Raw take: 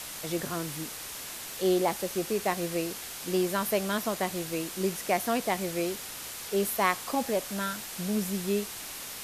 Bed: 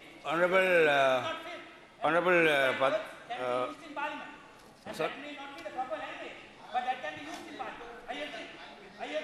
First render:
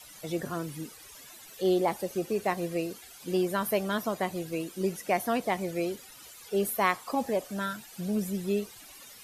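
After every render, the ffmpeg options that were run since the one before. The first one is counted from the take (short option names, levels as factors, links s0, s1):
-af "afftdn=nr=15:nf=-40"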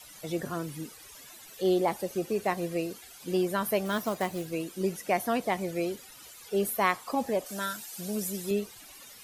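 -filter_complex "[0:a]asettb=1/sr,asplit=3[s0][s1][s2];[s0]atrim=end=3.854[s3];[s1]atrim=start=3.85:end=4.46,asetpts=PTS-STARTPTS,afade=t=in:d=0.004:c=qsin,afade=t=out:st=0.606:d=0.004:c=qsin,acrusher=bits=4:mode=log:mix=0:aa=0.000001[s4];[s2]atrim=start=4.456[s5];[s3][s4]acrossfade=d=0.004:c1=hsin:c2=qsin[s6];[s6][s5]acrossfade=d=0.004:c1=qsin:c2=hsin,asettb=1/sr,asplit=3[s7][s8][s9];[s7]atrim=end=7.464[s10];[s8]atrim=start=7.46:end=8.51,asetpts=PTS-STARTPTS,afade=t=in:d=0.004:c=qsin,afade=t=out:st=1.046:d=0.004:c=qsin,bass=f=250:g=-7,treble=f=4000:g=8[s11];[s9]atrim=start=8.506[s12];[s10][s11]acrossfade=d=0.004:c1=hsin:c2=qsin[s13];[s13][s12]acrossfade=d=0.004:c1=qsin:c2=hsin"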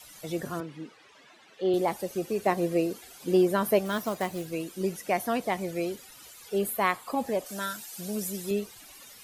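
-filter_complex "[0:a]asettb=1/sr,asplit=3[s0][s1][s2];[s0]atrim=end=0.604[s3];[s1]atrim=start=0.6:end=1.74,asetpts=PTS-STARTPTS,afade=t=in:d=0.004:c=qsin,afade=t=out:st=1.136:d=0.004:c=qsin,highpass=190,lowpass=3000[s4];[s2]atrim=start=1.736[s5];[s3][s4]acrossfade=d=0.004:c1=hsin:c2=qsin[s6];[s6][s5]acrossfade=d=0.004:c1=qsin:c2=hsin,asettb=1/sr,asplit=3[s7][s8][s9];[s7]atrim=end=2.464[s10];[s8]atrim=start=2.46:end=3.79,asetpts=PTS-STARTPTS,afade=t=in:d=0.004:c=qsin,afade=t=out:st=1.326:d=0.004:c=qsin,equalizer=f=370:t=o:w=2.4:g=6[s11];[s9]atrim=start=3.786[s12];[s10][s11]acrossfade=d=0.004:c1=hsin:c2=qsin[s13];[s13][s12]acrossfade=d=0.004:c1=qsin:c2=hsin,asettb=1/sr,asplit=3[s14][s15][s16];[s14]atrim=end=6.584[s17];[s15]atrim=start=6.58:end=7.25,asetpts=PTS-STARTPTS,afade=t=in:d=0.004:c=qsin,afade=t=out:st=0.666:d=0.004:c=qsin,equalizer=f=5700:w=3.8:g=-8[s18];[s16]atrim=start=7.246[s19];[s17][s18]acrossfade=d=0.004:c1=hsin:c2=qsin[s20];[s20][s19]acrossfade=d=0.004:c1=qsin:c2=hsin"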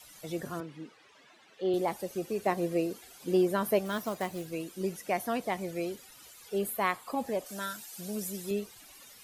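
-af "volume=0.668"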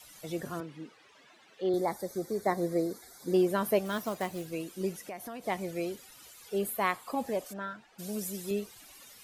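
-filter_complex "[0:a]asettb=1/sr,asplit=3[s0][s1][s2];[s0]atrim=end=1.694[s3];[s1]atrim=start=1.69:end=3.34,asetpts=PTS-STARTPTS,afade=t=in:d=0.004:c=qsin,afade=t=out:st=1.646:d=0.004:c=qsin,asuperstop=centerf=2800:order=8:qfactor=2.2[s4];[s2]atrim=start=3.336[s5];[s3][s4]acrossfade=d=0.004:c1=hsin:c2=qsin[s6];[s6][s5]acrossfade=d=0.004:c1=qsin:c2=hsin,asettb=1/sr,asplit=3[s7][s8][s9];[s7]atrim=end=4.914[s10];[s8]atrim=start=4.91:end=5.47,asetpts=PTS-STARTPTS,afade=t=in:d=0.004:c=qsin,afade=t=out:st=0.556:d=0.004:c=qsin,acompressor=threshold=0.0112:ratio=4:attack=3.2:release=140:knee=1:detection=peak[s11];[s9]atrim=start=5.466[s12];[s10][s11]acrossfade=d=0.004:c1=hsin:c2=qsin[s13];[s13][s12]acrossfade=d=0.004:c1=qsin:c2=hsin,asplit=3[s14][s15][s16];[s14]afade=t=out:st=7.52:d=0.02[s17];[s15]lowpass=1800,afade=t=in:st=7.52:d=0.02,afade=t=out:st=7.98:d=0.02[s18];[s16]afade=t=in:st=7.98:d=0.02[s19];[s17][s18][s19]amix=inputs=3:normalize=0"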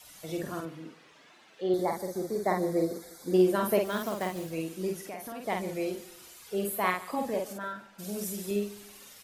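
-filter_complex "[0:a]asplit=2[s0][s1];[s1]adelay=49,volume=0.668[s2];[s0][s2]amix=inputs=2:normalize=0,aecho=1:1:147|294|441:0.119|0.0475|0.019"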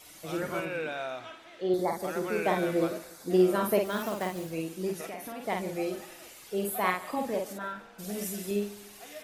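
-filter_complex "[1:a]volume=0.316[s0];[0:a][s0]amix=inputs=2:normalize=0"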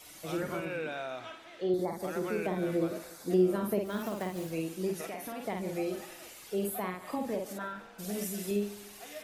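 -filter_complex "[0:a]acrossover=split=390[s0][s1];[s1]acompressor=threshold=0.0178:ratio=10[s2];[s0][s2]amix=inputs=2:normalize=0"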